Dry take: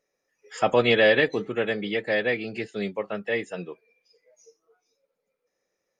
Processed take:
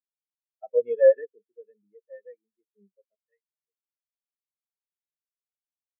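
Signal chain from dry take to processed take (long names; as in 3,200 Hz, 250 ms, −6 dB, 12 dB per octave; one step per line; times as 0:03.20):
0:03.15–0:03.63: high-pass filter 970 Hz 6 dB per octave
every bin expanded away from the loudest bin 4 to 1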